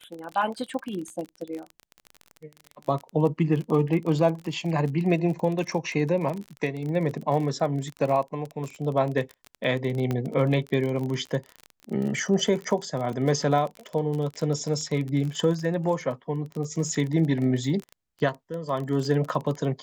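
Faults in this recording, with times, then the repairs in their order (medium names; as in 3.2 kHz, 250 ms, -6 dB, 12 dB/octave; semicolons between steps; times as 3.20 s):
crackle 30 per s -30 dBFS
10.11 s: pop -15 dBFS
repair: de-click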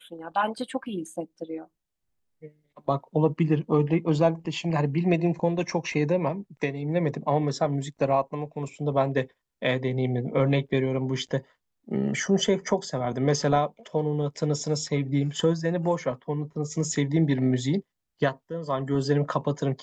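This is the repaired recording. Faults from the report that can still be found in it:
nothing left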